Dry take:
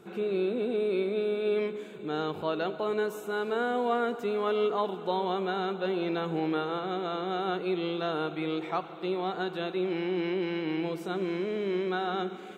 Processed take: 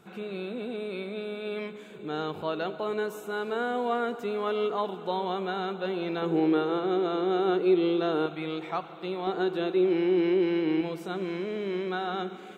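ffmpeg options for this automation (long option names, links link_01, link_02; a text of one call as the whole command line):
ffmpeg -i in.wav -af "asetnsamples=nb_out_samples=441:pad=0,asendcmd='1.9 equalizer g -1.5;6.22 equalizer g 8.5;8.26 equalizer g -3;9.27 equalizer g 7;10.81 equalizer g -1.5',equalizer=frequency=370:width_type=o:width=0.84:gain=-9" out.wav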